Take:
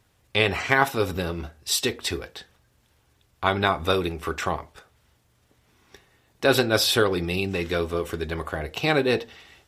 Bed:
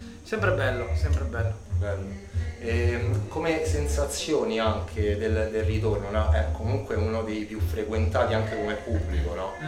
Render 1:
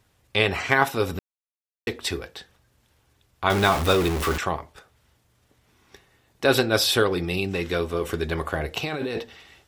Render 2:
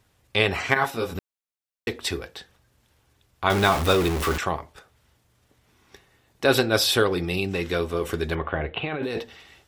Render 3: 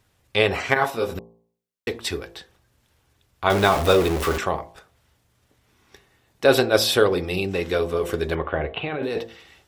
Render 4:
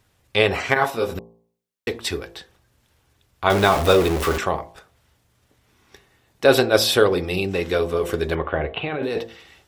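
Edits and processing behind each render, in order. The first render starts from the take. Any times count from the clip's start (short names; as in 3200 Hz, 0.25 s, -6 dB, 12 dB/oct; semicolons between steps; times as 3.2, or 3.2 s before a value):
1.19–1.87 mute; 3.5–4.38 zero-crossing step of -22.5 dBFS; 8.01–9.21 negative-ratio compressor -26 dBFS
0.74–1.15 detuned doubles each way 16 cents; 8.35–9.03 steep low-pass 3400 Hz 48 dB/oct
de-hum 56.8 Hz, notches 20; dynamic EQ 540 Hz, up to +6 dB, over -35 dBFS, Q 1.3
gain +1.5 dB; limiter -1 dBFS, peak gain reduction 1.5 dB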